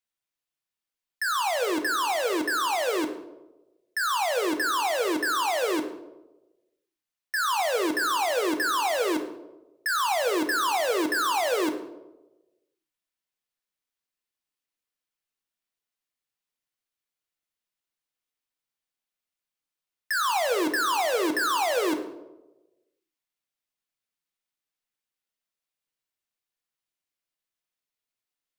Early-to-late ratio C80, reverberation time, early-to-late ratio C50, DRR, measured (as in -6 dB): 12.5 dB, 1.1 s, 10.5 dB, 6.0 dB